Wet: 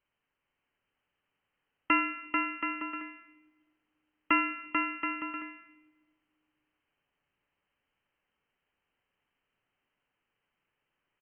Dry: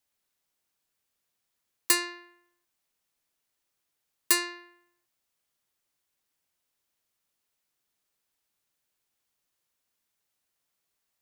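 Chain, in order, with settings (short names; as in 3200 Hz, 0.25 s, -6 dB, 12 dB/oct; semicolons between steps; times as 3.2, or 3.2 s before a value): inverted band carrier 3100 Hz; notch 670 Hz, Q 13; on a send: bouncing-ball echo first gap 0.44 s, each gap 0.65×, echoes 5; on the sum: shoebox room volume 1400 m³, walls mixed, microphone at 0.33 m; gain +3.5 dB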